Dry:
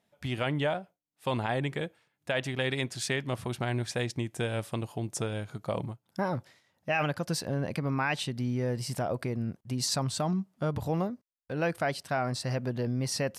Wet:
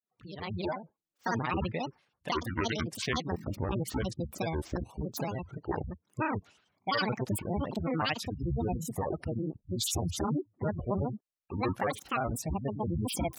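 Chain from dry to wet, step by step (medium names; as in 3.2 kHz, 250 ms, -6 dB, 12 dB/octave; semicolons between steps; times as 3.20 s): fade-in on the opening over 0.95 s; spectral gate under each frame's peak -20 dB strong; granulator 76 ms, grains 27 per s, spray 21 ms, pitch spread up and down by 12 st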